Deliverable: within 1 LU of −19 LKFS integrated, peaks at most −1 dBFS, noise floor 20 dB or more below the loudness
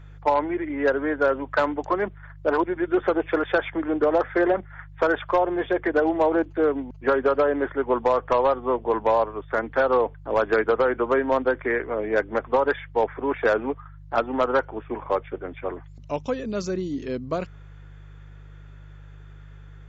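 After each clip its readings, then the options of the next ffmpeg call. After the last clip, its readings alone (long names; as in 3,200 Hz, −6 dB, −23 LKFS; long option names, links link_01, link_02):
mains hum 50 Hz; hum harmonics up to 150 Hz; level of the hum −41 dBFS; integrated loudness −24.0 LKFS; sample peak −11.0 dBFS; target loudness −19.0 LKFS
→ -af "bandreject=frequency=50:width_type=h:width=4,bandreject=frequency=100:width_type=h:width=4,bandreject=frequency=150:width_type=h:width=4"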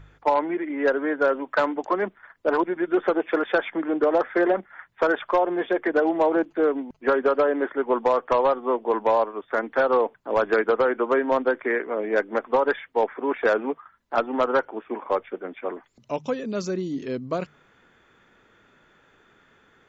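mains hum none found; integrated loudness −24.0 LKFS; sample peak −11.5 dBFS; target loudness −19.0 LKFS
→ -af "volume=5dB"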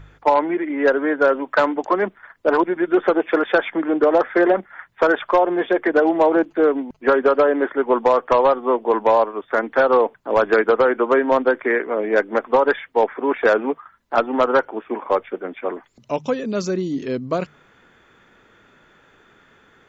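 integrated loudness −19.0 LKFS; sample peak −6.5 dBFS; background noise floor −55 dBFS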